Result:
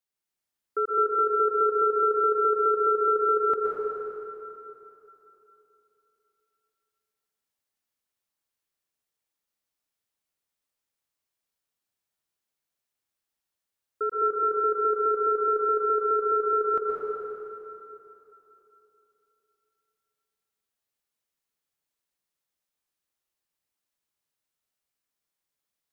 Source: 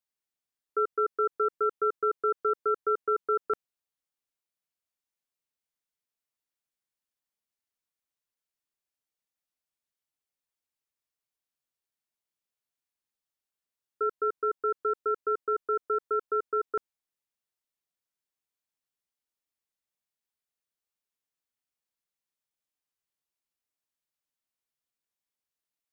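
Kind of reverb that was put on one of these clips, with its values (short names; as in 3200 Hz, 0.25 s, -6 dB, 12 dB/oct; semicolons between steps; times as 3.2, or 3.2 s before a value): plate-style reverb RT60 3.2 s, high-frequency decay 0.8×, pre-delay 0.105 s, DRR -3 dB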